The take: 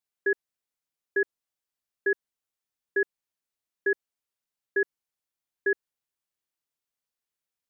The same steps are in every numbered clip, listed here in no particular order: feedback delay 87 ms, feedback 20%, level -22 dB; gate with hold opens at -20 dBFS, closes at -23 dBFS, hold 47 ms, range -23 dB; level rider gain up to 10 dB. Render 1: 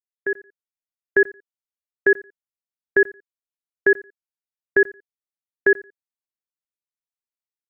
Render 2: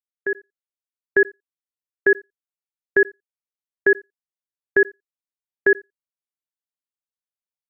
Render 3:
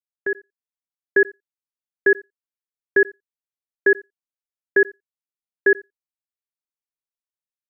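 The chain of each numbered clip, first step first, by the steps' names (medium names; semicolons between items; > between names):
gate with hold > feedback delay > level rider; feedback delay > gate with hold > level rider; feedback delay > level rider > gate with hold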